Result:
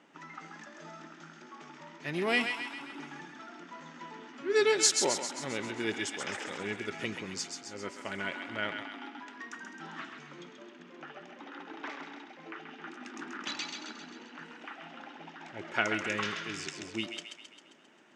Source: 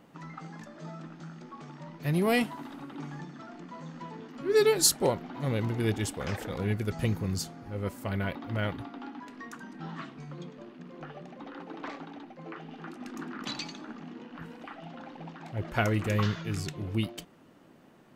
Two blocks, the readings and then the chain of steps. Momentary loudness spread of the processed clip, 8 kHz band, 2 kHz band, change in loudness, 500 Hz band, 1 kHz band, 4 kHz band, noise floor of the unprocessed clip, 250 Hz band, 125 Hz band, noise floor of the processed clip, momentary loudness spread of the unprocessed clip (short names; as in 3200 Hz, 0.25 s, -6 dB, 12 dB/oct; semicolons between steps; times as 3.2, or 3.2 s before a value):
19 LU, 0.0 dB, +3.5 dB, -3.0 dB, -3.5 dB, -1.5 dB, +1.0 dB, -56 dBFS, -6.5 dB, -17.5 dB, -54 dBFS, 18 LU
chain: speaker cabinet 410–7100 Hz, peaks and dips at 500 Hz -9 dB, 720 Hz -7 dB, 1100 Hz -6 dB, 4300 Hz -7 dB; thinning echo 0.133 s, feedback 59%, high-pass 940 Hz, level -5 dB; gain +3 dB